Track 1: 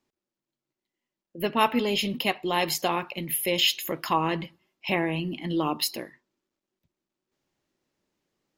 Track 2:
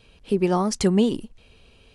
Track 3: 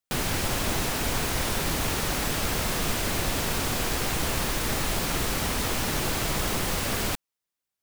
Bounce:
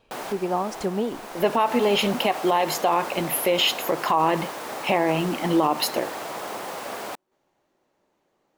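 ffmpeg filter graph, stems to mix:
-filter_complex "[0:a]bandreject=f=5100:w=15,alimiter=limit=0.224:level=0:latency=1:release=319,volume=1.19[s0];[1:a]volume=0.237,asplit=2[s1][s2];[2:a]highpass=240,volume=0.282[s3];[s2]apad=whole_len=345087[s4];[s3][s4]sidechaincompress=threshold=0.0178:ratio=4:attack=12:release=828[s5];[s0][s1][s5]amix=inputs=3:normalize=0,equalizer=f=750:t=o:w=2.1:g=13.5,alimiter=limit=0.282:level=0:latency=1:release=70"

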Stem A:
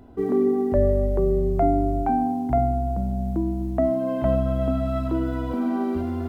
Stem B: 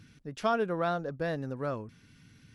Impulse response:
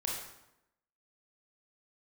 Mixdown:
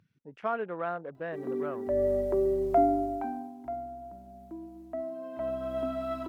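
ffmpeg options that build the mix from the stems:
-filter_complex "[0:a]aecho=1:1:3.1:0.5,adelay=1150,volume=2.11,afade=t=out:st=2.76:d=0.78:silence=0.223872,afade=t=in:st=5.31:d=0.45:silence=0.375837[s0];[1:a]afwtdn=0.00708,lowpass=f=2600:p=1,volume=0.891,asplit=2[s1][s2];[s2]apad=whole_len=328135[s3];[s0][s3]sidechaincompress=threshold=0.00794:ratio=4:attack=16:release=418[s4];[s4][s1]amix=inputs=2:normalize=0,highpass=f=450:p=1"

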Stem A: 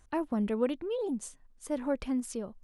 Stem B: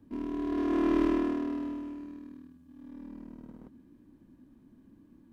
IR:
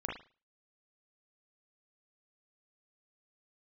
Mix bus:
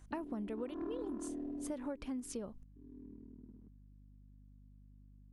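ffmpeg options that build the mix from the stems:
-filter_complex "[0:a]volume=0.841[s0];[1:a]afwtdn=0.02,aeval=exprs='val(0)+0.00316*(sin(2*PI*50*n/s)+sin(2*PI*2*50*n/s)/2+sin(2*PI*3*50*n/s)/3+sin(2*PI*4*50*n/s)/4+sin(2*PI*5*50*n/s)/5)':c=same,volume=0.398[s1];[s0][s1]amix=inputs=2:normalize=0,acompressor=threshold=0.0141:ratio=12"

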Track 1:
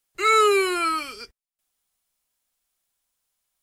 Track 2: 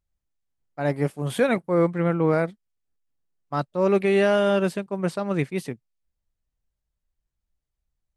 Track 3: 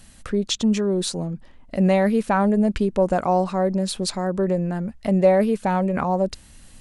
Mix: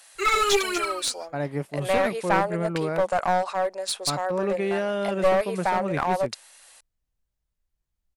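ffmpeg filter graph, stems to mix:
-filter_complex "[0:a]aphaser=in_gain=1:out_gain=1:delay=4.3:decay=0.7:speed=1.3:type=triangular,volume=0.562,afade=t=out:st=0.79:d=0.21:silence=0.375837[s0];[1:a]acompressor=threshold=0.0355:ratio=2,adelay=550,volume=1.06[s1];[2:a]highpass=f=580:w=0.5412,highpass=f=580:w=1.3066,bandreject=f=3000:w=24,volume=1.19[s2];[s0][s1][s2]amix=inputs=3:normalize=0,aeval=exprs='clip(val(0),-1,0.0841)':c=same"

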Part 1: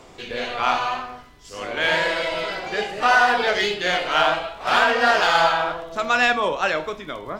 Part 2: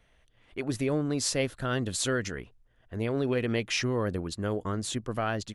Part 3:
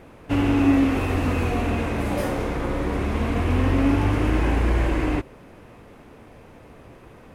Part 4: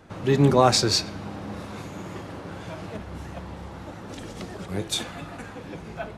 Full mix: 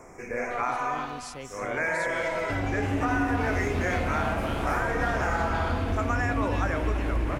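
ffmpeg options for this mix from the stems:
-filter_complex "[0:a]volume=0.841,asplit=2[s0][s1];[s1]volume=0.141[s2];[1:a]volume=0.224[s3];[2:a]adelay=2200,volume=0.944,asplit=2[s4][s5];[s5]volume=0.447[s6];[s3][s4]amix=inputs=2:normalize=0,acrossover=split=200[s7][s8];[s8]acompressor=threshold=0.0224:ratio=6[s9];[s7][s9]amix=inputs=2:normalize=0,alimiter=limit=0.0841:level=0:latency=1,volume=1[s10];[s0]asuperstop=centerf=3600:order=12:qfactor=1.2,acompressor=threshold=0.0794:ratio=6,volume=1[s11];[s2][s6]amix=inputs=2:normalize=0,aecho=0:1:320|640|960|1280:1|0.31|0.0961|0.0298[s12];[s10][s11][s12]amix=inputs=3:normalize=0,acompressor=threshold=0.0562:ratio=2"

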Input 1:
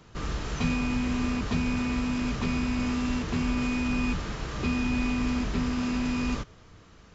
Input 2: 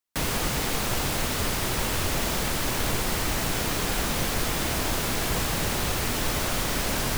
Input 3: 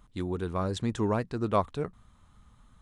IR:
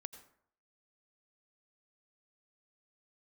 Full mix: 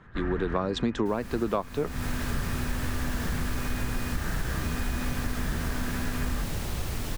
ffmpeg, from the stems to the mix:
-filter_complex "[0:a]bandreject=f=50:t=h:w=6,bandreject=f=100:t=h:w=6,bandreject=f=150:t=h:w=6,bandreject=f=200:t=h:w=6,bandreject=f=250:t=h:w=6,alimiter=level_in=1.19:limit=0.0631:level=0:latency=1:release=20,volume=0.841,lowpass=f=1700:t=q:w=5.6,volume=0.531[s0];[1:a]adelay=900,volume=0.299[s1];[2:a]dynaudnorm=f=250:g=5:m=5.96,highpass=130,acrossover=split=220 5600:gain=0.2 1 0.0891[s2][s3][s4];[s2][s3][s4]amix=inputs=3:normalize=0,volume=1.33[s5];[s0][s1][s5]amix=inputs=3:normalize=0,lowshelf=f=190:g=11.5,acompressor=threshold=0.0708:ratio=16"

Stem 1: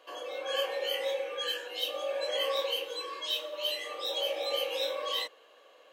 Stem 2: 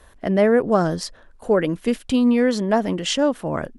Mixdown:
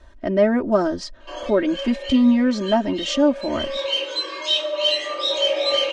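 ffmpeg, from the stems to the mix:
-filter_complex "[0:a]aeval=exprs='0.126*sin(PI/2*1.58*val(0)/0.126)':c=same,adelay=1200,volume=1.19[s0];[1:a]lowshelf=f=420:g=4.5,volume=0.562,asplit=2[s1][s2];[s2]apad=whole_len=314416[s3];[s0][s3]sidechaincompress=threshold=0.0251:ratio=8:attack=35:release=573[s4];[s4][s1]amix=inputs=2:normalize=0,lowpass=f=6700:w=0.5412,lowpass=f=6700:w=1.3066,aecho=1:1:3.2:0.99"

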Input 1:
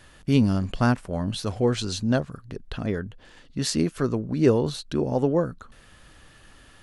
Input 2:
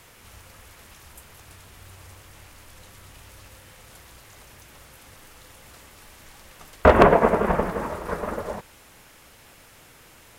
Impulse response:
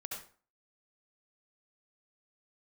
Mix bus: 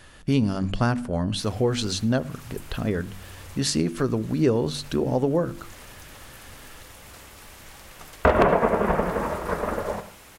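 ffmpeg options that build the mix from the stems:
-filter_complex "[0:a]bandreject=f=48.59:t=h:w=4,bandreject=f=97.18:t=h:w=4,bandreject=f=145.77:t=h:w=4,bandreject=f=194.36:t=h:w=4,bandreject=f=242.95:t=h:w=4,bandreject=f=291.54:t=h:w=4,bandreject=f=340.13:t=h:w=4,volume=1.33,asplit=3[s0][s1][s2];[s1]volume=0.106[s3];[1:a]adelay=1400,volume=1.06,asplit=2[s4][s5];[s5]volume=0.473[s6];[s2]apad=whole_len=519632[s7];[s4][s7]sidechaincompress=threshold=0.0316:ratio=8:attack=27:release=215[s8];[2:a]atrim=start_sample=2205[s9];[s3][s6]amix=inputs=2:normalize=0[s10];[s10][s9]afir=irnorm=-1:irlink=0[s11];[s0][s8][s11]amix=inputs=3:normalize=0,acompressor=threshold=0.1:ratio=2"

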